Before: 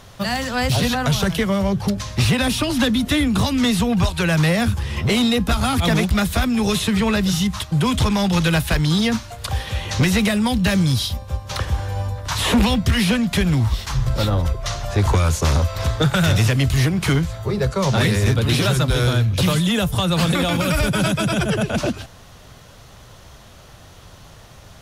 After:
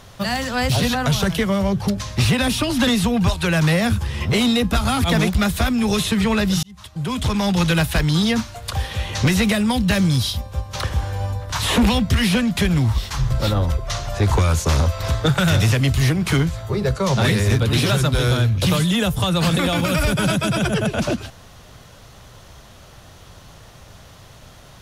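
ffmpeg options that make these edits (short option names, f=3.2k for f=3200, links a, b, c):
-filter_complex "[0:a]asplit=3[a][b][c];[a]atrim=end=2.872[d];[b]atrim=start=3.628:end=7.39,asetpts=PTS-STARTPTS,afade=t=out:st=3.758:d=0.004:c=hsin[e];[c]atrim=start=7.39,asetpts=PTS-STARTPTS,afade=t=in:d=0.89[f];[e][f]concat=n=2:v=0:a=1[g];[d][g]acrossfade=d=0.004:c1=hsin:c2=hsin"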